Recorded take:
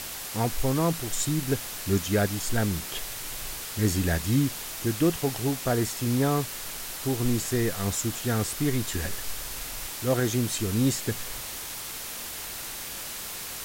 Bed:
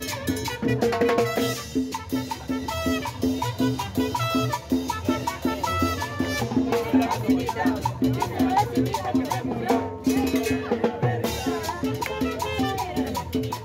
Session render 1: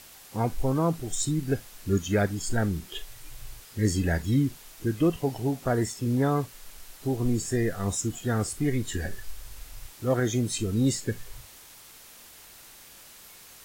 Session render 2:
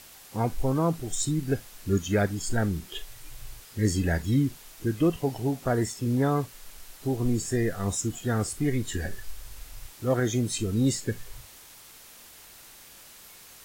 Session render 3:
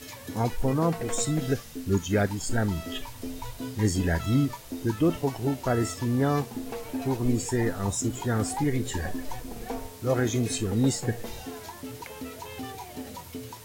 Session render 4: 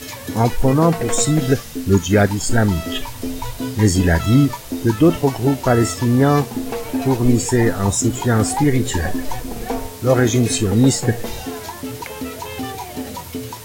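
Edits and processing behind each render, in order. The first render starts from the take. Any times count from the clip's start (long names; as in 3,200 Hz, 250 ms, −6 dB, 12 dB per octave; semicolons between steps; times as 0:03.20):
noise reduction from a noise print 13 dB
no processing that can be heard
mix in bed −13 dB
level +10.5 dB; brickwall limiter −3 dBFS, peak gain reduction 1 dB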